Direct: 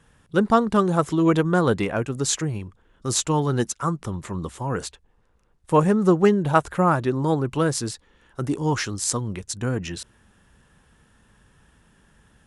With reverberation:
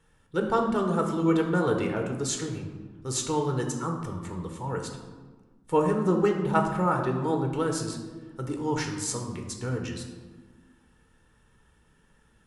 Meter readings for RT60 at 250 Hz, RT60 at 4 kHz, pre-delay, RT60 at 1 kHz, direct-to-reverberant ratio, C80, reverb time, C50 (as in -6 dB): 2.1 s, 0.80 s, 3 ms, 1.3 s, 2.5 dB, 8.0 dB, 1.5 s, 6.0 dB